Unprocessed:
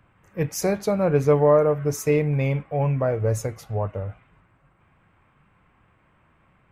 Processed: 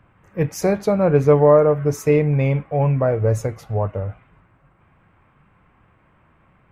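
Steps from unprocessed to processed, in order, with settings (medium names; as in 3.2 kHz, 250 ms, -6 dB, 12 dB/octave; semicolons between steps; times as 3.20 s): treble shelf 3.3 kHz -8 dB; trim +4.5 dB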